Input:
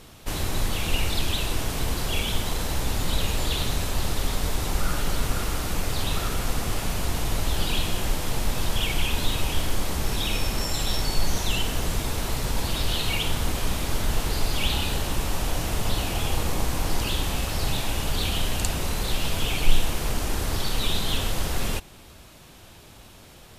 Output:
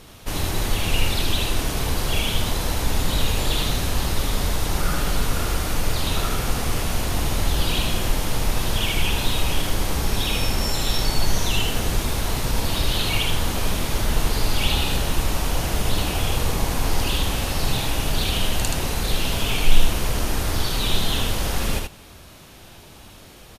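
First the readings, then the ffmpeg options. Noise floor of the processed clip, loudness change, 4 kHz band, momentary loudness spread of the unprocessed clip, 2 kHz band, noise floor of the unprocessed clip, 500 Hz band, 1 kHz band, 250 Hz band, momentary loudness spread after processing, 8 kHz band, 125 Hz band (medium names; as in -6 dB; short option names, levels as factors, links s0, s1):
-45 dBFS, +3.5 dB, +3.5 dB, 3 LU, +3.5 dB, -48 dBFS, +3.5 dB, +3.5 dB, +3.5 dB, 3 LU, +3.0 dB, +3.5 dB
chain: -af "bandreject=f=7600:w=17,aecho=1:1:77:0.668,volume=1.26"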